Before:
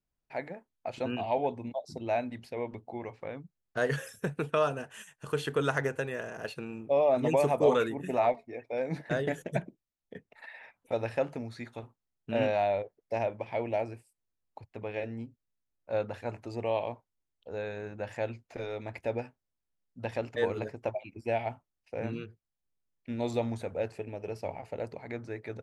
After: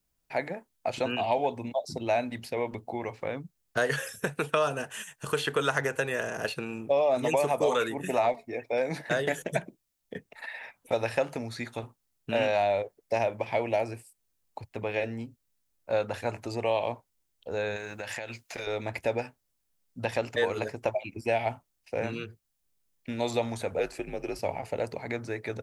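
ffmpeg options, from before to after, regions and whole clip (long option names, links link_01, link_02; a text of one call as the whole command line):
ffmpeg -i in.wav -filter_complex "[0:a]asettb=1/sr,asplit=3[link_01][link_02][link_03];[link_01]atrim=end=17.764[link_04];[link_02]atrim=start=17.76:end=18.67,asetpts=PTS-STARTPTS,afade=type=in:duration=0.004:curve=qsin,afade=type=out:start_time=0.906:duration=0.004:curve=qsin,tiltshelf=frequency=800:gain=-7.5,acompressor=threshold=-39dB:ratio=12:attack=3.2:release=140:knee=1:detection=peak[link_05];[link_03]atrim=start=18.666[link_06];[link_04][link_05]acrossfade=duration=0.004:curve1=hsin:curve2=qsin[link_07];[link_07][link_06]acrossfade=duration=0.004:curve1=qsin:curve2=hsin,asettb=1/sr,asplit=3[link_08][link_09][link_10];[link_08]atrim=end=23.794[link_11];[link_09]atrim=start=23.79:end=24.39,asetpts=PTS-STARTPTS,afade=type=in:duration=0.004:curve=qsin,afade=type=out:start_time=0.596:duration=0.004:curve=qsin,highpass=frequency=180:poles=1,afreqshift=-70[link_12];[link_10]atrim=start=24.386[link_13];[link_11][link_12]acrossfade=duration=0.004:curve1=hsin:curve2=qsin[link_14];[link_14][link_13]acrossfade=duration=0.004:curve1=qsin:curve2=hsin,acrossover=split=490|4100[link_15][link_16][link_17];[link_15]acompressor=threshold=-41dB:ratio=4[link_18];[link_16]acompressor=threshold=-31dB:ratio=4[link_19];[link_17]acompressor=threshold=-56dB:ratio=4[link_20];[link_18][link_19][link_20]amix=inputs=3:normalize=0,highshelf=frequency=4600:gain=9,volume=6.5dB" out.wav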